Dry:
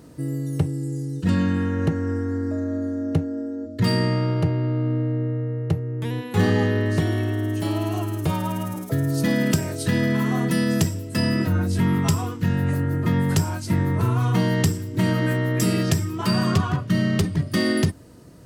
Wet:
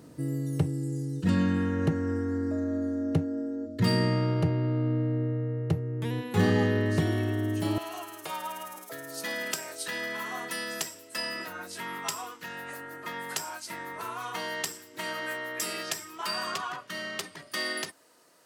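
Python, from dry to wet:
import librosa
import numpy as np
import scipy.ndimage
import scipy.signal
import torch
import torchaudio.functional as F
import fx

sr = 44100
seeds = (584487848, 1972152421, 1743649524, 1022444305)

y = fx.highpass(x, sr, hz=fx.steps((0.0, 96.0), (7.78, 770.0)), slope=12)
y = y * 10.0 ** (-3.5 / 20.0)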